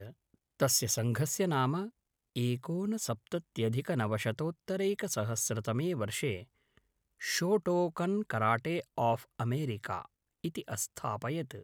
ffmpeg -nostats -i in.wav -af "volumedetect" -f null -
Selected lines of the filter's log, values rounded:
mean_volume: -33.6 dB
max_volume: -14.7 dB